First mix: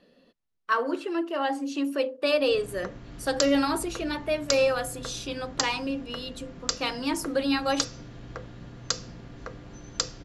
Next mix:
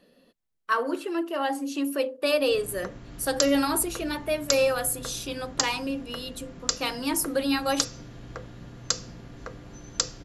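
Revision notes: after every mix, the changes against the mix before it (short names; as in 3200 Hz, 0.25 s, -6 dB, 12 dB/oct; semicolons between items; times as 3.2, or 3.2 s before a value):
master: remove LPF 6400 Hz 12 dB/oct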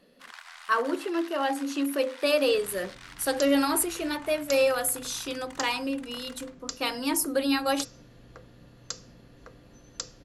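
first sound: unmuted; second sound -10.0 dB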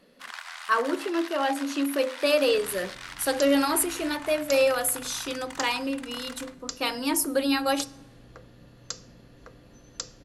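first sound +5.0 dB; reverb: on, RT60 1.2 s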